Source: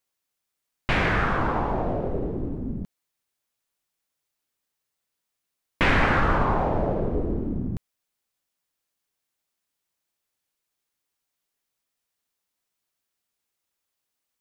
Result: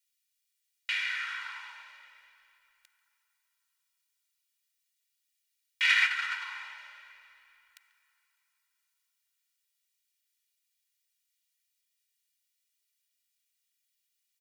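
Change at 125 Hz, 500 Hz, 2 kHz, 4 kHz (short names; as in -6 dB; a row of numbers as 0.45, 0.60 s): under -40 dB, under -40 dB, -2.5 dB, +2.5 dB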